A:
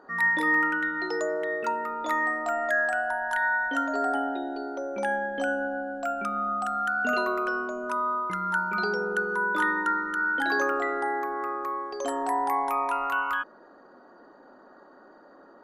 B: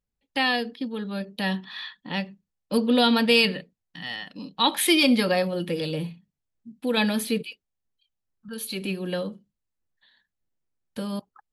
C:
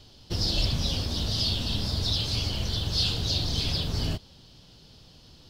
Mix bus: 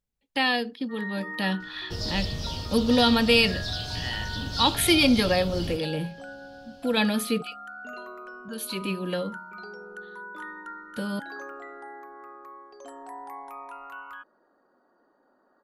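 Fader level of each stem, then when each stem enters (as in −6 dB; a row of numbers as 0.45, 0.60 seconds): −14.0, −0.5, −5.0 decibels; 0.80, 0.00, 1.60 seconds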